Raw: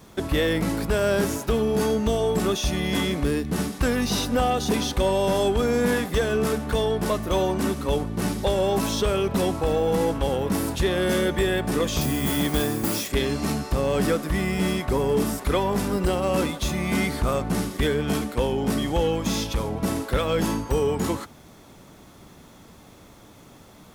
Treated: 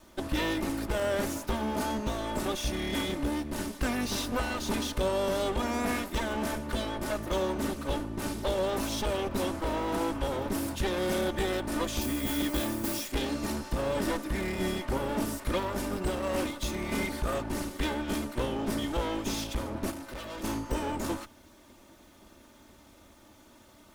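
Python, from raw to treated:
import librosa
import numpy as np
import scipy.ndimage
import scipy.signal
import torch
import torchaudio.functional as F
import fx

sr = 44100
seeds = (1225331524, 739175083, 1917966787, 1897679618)

y = fx.lower_of_two(x, sr, delay_ms=3.3)
y = fx.tube_stage(y, sr, drive_db=32.0, bias=0.5, at=(19.9, 20.43), fade=0.02)
y = F.gain(torch.from_numpy(y), -5.5).numpy()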